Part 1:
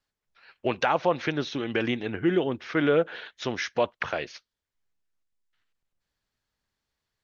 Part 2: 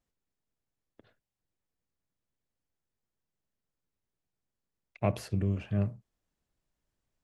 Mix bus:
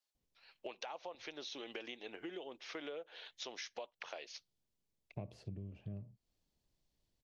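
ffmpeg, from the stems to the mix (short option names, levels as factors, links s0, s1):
-filter_complex "[0:a]highpass=710,volume=0.841[s0];[1:a]lowpass=4600,adelay=150,volume=1.19[s1];[s0][s1]amix=inputs=2:normalize=0,equalizer=f=1500:w=1:g=-14,acompressor=threshold=0.00794:ratio=16"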